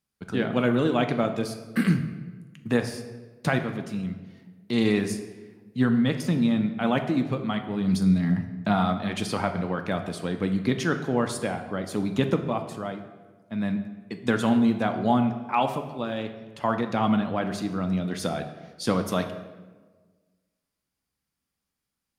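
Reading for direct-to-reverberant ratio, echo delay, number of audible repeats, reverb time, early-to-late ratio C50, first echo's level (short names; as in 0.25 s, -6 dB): 6.0 dB, none, none, 1.4 s, 9.5 dB, none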